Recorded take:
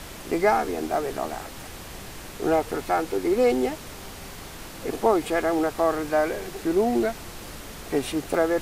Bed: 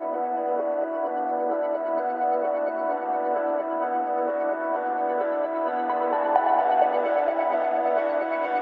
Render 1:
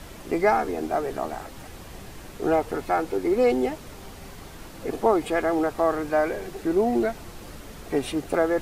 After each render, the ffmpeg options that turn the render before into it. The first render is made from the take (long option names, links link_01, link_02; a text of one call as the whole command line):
ffmpeg -i in.wav -af "afftdn=noise_reduction=6:noise_floor=-40" out.wav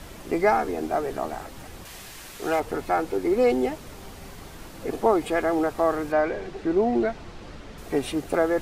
ffmpeg -i in.wav -filter_complex "[0:a]asettb=1/sr,asplit=3[link_01][link_02][link_03];[link_01]atrim=end=1.854[link_04];[link_02]atrim=start=1.85:end=2.6,asetpts=PTS-STARTPTS,afade=type=in:duration=0.004:curve=qsin,afade=type=out:start_time=0.746:duration=0.004:curve=qsin,tiltshelf=frequency=970:gain=-7[link_05];[link_03]atrim=start=2.596[link_06];[link_04][link_05]acrossfade=duration=0.004:curve1=hsin:curve2=qsin[link_07];[link_07][link_06]acrossfade=duration=0.004:curve1=qsin:curve2=hsin,asettb=1/sr,asplit=3[link_08][link_09][link_10];[link_08]atrim=end=6.124[link_11];[link_09]atrim=start=6.12:end=7.78,asetpts=PTS-STARTPTS,afade=type=in:duration=0.004:curve=qsin,afade=type=out:start_time=1.656:duration=0.004:curve=qsin,lowpass=4800[link_12];[link_10]atrim=start=7.776[link_13];[link_11][link_12]acrossfade=duration=0.004:curve1=hsin:curve2=qsin[link_14];[link_14][link_13]acrossfade=duration=0.004:curve1=qsin:curve2=hsin" out.wav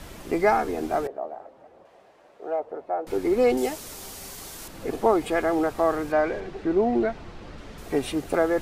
ffmpeg -i in.wav -filter_complex "[0:a]asettb=1/sr,asplit=3[link_01][link_02][link_03];[link_01]atrim=end=1.074[link_04];[link_02]atrim=start=1.07:end=3.07,asetpts=PTS-STARTPTS,afade=type=in:duration=0.004:curve=qsin,afade=type=out:start_time=1.996:duration=0.004:curve=qsin,bandpass=frequency=590:width_type=q:width=2.6[link_05];[link_03]atrim=start=3.066[link_06];[link_04][link_05]acrossfade=duration=0.004:curve1=hsin:curve2=qsin[link_07];[link_07][link_06]acrossfade=duration=0.004:curve1=qsin:curve2=hsin,asettb=1/sr,asplit=3[link_08][link_09][link_10];[link_08]atrim=end=3.574[link_11];[link_09]atrim=start=3.57:end=4.68,asetpts=PTS-STARTPTS,afade=type=in:duration=0.004:curve=qsin,afade=type=out:start_time=1.106:duration=0.004:curve=qsin,bass=frequency=250:gain=-6,treble=frequency=4000:gain=12[link_12];[link_10]atrim=start=4.676[link_13];[link_11][link_12]acrossfade=duration=0.004:curve1=hsin:curve2=qsin[link_14];[link_14][link_13]acrossfade=duration=0.004:curve1=qsin:curve2=hsin,asettb=1/sr,asplit=3[link_15][link_16][link_17];[link_15]atrim=end=6.404[link_18];[link_16]atrim=start=6.4:end=7.58,asetpts=PTS-STARTPTS,afade=type=in:duration=0.004:curve=qsin,afade=type=out:start_time=1.176:duration=0.004:curve=qsin,highshelf=frequency=5400:gain=-7.5[link_19];[link_17]atrim=start=7.576[link_20];[link_18][link_19]acrossfade=duration=0.004:curve1=hsin:curve2=qsin[link_21];[link_21][link_20]acrossfade=duration=0.004:curve1=qsin:curve2=hsin" out.wav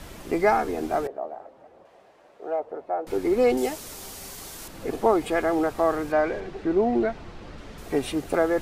ffmpeg -i in.wav -af anull out.wav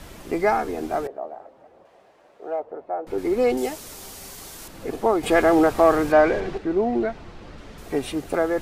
ffmpeg -i in.wav -filter_complex "[0:a]asettb=1/sr,asplit=3[link_01][link_02][link_03];[link_01]atrim=end=2.624[link_04];[link_02]atrim=start=2.62:end=3.18,asetpts=PTS-STARTPTS,afade=type=in:duration=0.004:curve=qsin,afade=type=out:start_time=0.556:duration=0.004:curve=qsin,highshelf=frequency=3200:gain=-8.5[link_05];[link_03]atrim=start=3.176[link_06];[link_04][link_05]acrossfade=duration=0.004:curve1=hsin:curve2=qsin[link_07];[link_07][link_06]acrossfade=duration=0.004:curve1=qsin:curve2=hsin,asettb=1/sr,asplit=3[link_08][link_09][link_10];[link_08]atrim=end=5.234[link_11];[link_09]atrim=start=5.23:end=6.58,asetpts=PTS-STARTPTS,afade=type=in:duration=0.004:curve=qsin,afade=type=out:start_time=1.346:duration=0.004:curve=qsin,acontrast=86[link_12];[link_10]atrim=start=6.576[link_13];[link_11][link_12]acrossfade=duration=0.004:curve1=hsin:curve2=qsin[link_14];[link_14][link_13]acrossfade=duration=0.004:curve1=qsin:curve2=hsin" out.wav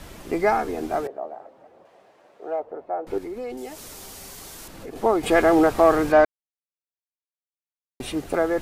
ffmpeg -i in.wav -filter_complex "[0:a]asettb=1/sr,asplit=3[link_01][link_02][link_03];[link_01]atrim=end=1.004[link_04];[link_02]atrim=start=1:end=2.47,asetpts=PTS-STARTPTS,afade=type=in:duration=0.004:curve=qsin,afade=type=out:start_time=1.466:duration=0.004:curve=qsin,highpass=92[link_05];[link_03]atrim=start=2.466[link_06];[link_04][link_05]acrossfade=duration=0.004:curve1=hsin:curve2=qsin[link_07];[link_07][link_06]acrossfade=duration=0.004:curve1=qsin:curve2=hsin,asettb=1/sr,asplit=3[link_08][link_09][link_10];[link_08]atrim=end=3.184[link_11];[link_09]atrim=start=3.18:end=4.96,asetpts=PTS-STARTPTS,afade=type=in:duration=0.004:curve=qsin,afade=type=out:start_time=1.776:duration=0.004:curve=qsin,acompressor=threshold=-36dB:ratio=2.5:attack=3.2:release=140:knee=1:detection=peak[link_12];[link_10]atrim=start=4.956[link_13];[link_11][link_12]acrossfade=duration=0.004:curve1=hsin:curve2=qsin[link_14];[link_14][link_13]acrossfade=duration=0.004:curve1=qsin:curve2=hsin,asplit=3[link_15][link_16][link_17];[link_15]atrim=end=6.25,asetpts=PTS-STARTPTS,afade=type=out:start_time=6.246:duration=0.004:curve=hsin[link_18];[link_16]atrim=start=6.25:end=8,asetpts=PTS-STARTPTS,volume=0[link_19];[link_17]atrim=start=8,asetpts=PTS-STARTPTS,afade=type=in:duration=0.004:curve=hsin[link_20];[link_18][link_19][link_20]concat=n=3:v=0:a=1" out.wav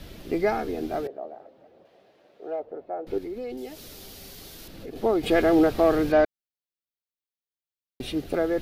ffmpeg -i in.wav -af "equalizer=frequency=1000:width_type=o:width=1:gain=-10,equalizer=frequency=2000:width_type=o:width=1:gain=-3,equalizer=frequency=4000:width_type=o:width=1:gain=4,equalizer=frequency=8000:width_type=o:width=1:gain=-11" out.wav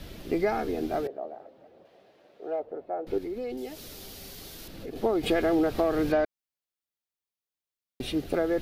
ffmpeg -i in.wav -af "acompressor=threshold=-21dB:ratio=5" out.wav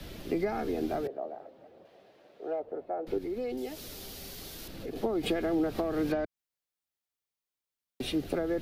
ffmpeg -i in.wav -filter_complex "[0:a]acrossover=split=280[link_01][link_02];[link_02]acompressor=threshold=-30dB:ratio=6[link_03];[link_01][link_03]amix=inputs=2:normalize=0,acrossover=split=150[link_04][link_05];[link_04]alimiter=level_in=16.5dB:limit=-24dB:level=0:latency=1,volume=-16.5dB[link_06];[link_06][link_05]amix=inputs=2:normalize=0" out.wav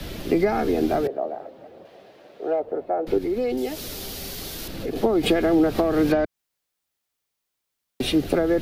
ffmpeg -i in.wav -af "volume=10dB" out.wav